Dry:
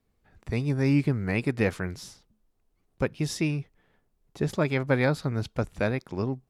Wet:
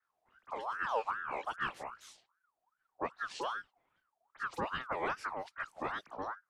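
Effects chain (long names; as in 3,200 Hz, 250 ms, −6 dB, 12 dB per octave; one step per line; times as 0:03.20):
pitch shifter swept by a sawtooth −8 semitones, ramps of 281 ms
all-pass dispersion highs, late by 45 ms, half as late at 1,900 Hz
ring modulator whose carrier an LFO sweeps 1,100 Hz, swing 40%, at 2.5 Hz
level −7.5 dB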